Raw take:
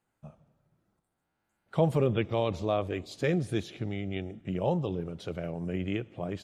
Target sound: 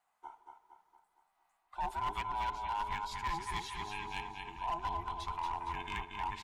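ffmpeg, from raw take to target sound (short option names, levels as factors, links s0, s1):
-filter_complex "[0:a]afftfilt=real='real(if(between(b,1,1008),(2*floor((b-1)/24)+1)*24-b,b),0)':imag='imag(if(between(b,1,1008),(2*floor((b-1)/24)+1)*24-b,b),0)*if(between(b,1,1008),-1,1)':win_size=2048:overlap=0.75,lowshelf=f=550:t=q:w=3:g=-13,areverse,acompressor=threshold=0.0251:ratio=20,areverse,asubboost=boost=7.5:cutoff=60,asplit=2[s0][s1];[s1]aecho=0:1:231|462|693|924|1155|1386:0.531|0.265|0.133|0.0664|0.0332|0.0166[s2];[s0][s2]amix=inputs=2:normalize=0,volume=33.5,asoftclip=hard,volume=0.0299"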